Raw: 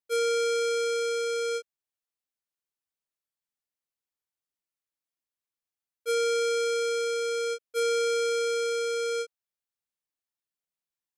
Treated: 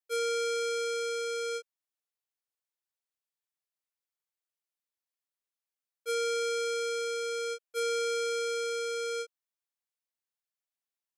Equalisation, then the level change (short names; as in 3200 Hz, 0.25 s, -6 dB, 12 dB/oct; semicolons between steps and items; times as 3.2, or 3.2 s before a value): HPF 420 Hz; -3.0 dB